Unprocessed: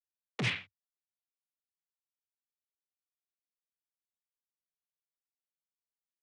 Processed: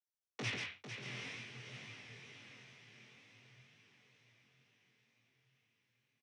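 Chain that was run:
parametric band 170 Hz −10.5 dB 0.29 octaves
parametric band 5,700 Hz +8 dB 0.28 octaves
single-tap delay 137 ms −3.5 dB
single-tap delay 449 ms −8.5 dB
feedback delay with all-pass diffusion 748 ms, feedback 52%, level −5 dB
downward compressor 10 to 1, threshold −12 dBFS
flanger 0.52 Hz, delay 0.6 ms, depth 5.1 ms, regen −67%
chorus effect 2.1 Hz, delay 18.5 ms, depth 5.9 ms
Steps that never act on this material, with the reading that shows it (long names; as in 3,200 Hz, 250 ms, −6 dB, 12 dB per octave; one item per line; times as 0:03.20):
downward compressor, threshold −12 dBFS: peak of its input −20.0 dBFS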